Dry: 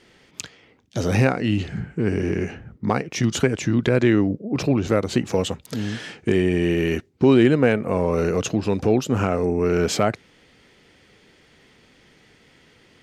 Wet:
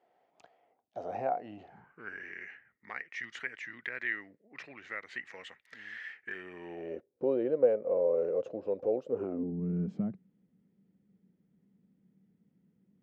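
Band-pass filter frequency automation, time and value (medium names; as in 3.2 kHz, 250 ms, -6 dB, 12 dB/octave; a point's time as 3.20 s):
band-pass filter, Q 7.9
1.64 s 710 Hz
2.26 s 1.9 kHz
6.22 s 1.9 kHz
6.96 s 530 Hz
9.08 s 530 Hz
9.55 s 190 Hz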